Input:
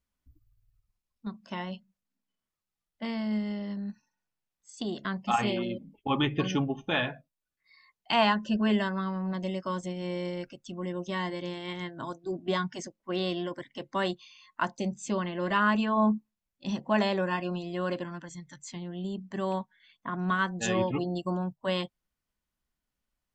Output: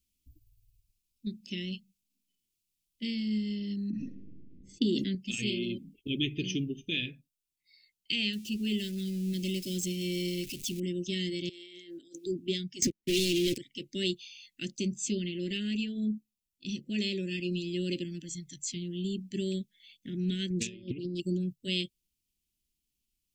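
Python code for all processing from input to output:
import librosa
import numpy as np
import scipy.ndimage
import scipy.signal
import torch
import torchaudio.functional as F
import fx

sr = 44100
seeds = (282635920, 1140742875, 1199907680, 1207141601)

y = fx.chain(x, sr, fx.env_lowpass(base_hz=300.0, full_db=-33.0),
    fx.small_body(hz=(270.0, 510.0, 2000.0), ring_ms=25, db=10),
    fx.sustainer(db_per_s=29.0), at=(3.9, 5.15))
y = fx.chain(y, sr, fx.zero_step(step_db=-43.5),
    fx.high_shelf(hz=4400.0, db=4.5), at=(8.33, 10.8))
y = fx.chain(y, sr, fx.highpass(hz=280.0, slope=24),
    fx.over_compress(threshold_db=-50.0, ratio=-1.0), at=(11.49, 12.26))
y = fx.chain(y, sr, fx.leveller(passes=5),
    fx.band_squash(depth_pct=100), at=(12.82, 13.58))
y = fx.chain(y, sr, fx.high_shelf(hz=3400.0, db=-7.0),
    fx.over_compress(threshold_db=-35.0, ratio=-0.5),
    fx.doppler_dist(depth_ms=0.28), at=(20.5, 21.2))
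y = scipy.signal.sosfilt(scipy.signal.ellip(3, 1.0, 70, [380.0, 2500.0], 'bandstop', fs=sr, output='sos'), y)
y = fx.high_shelf(y, sr, hz=2900.0, db=8.5)
y = fx.rider(y, sr, range_db=4, speed_s=0.5)
y = F.gain(torch.from_numpy(y), -2.0).numpy()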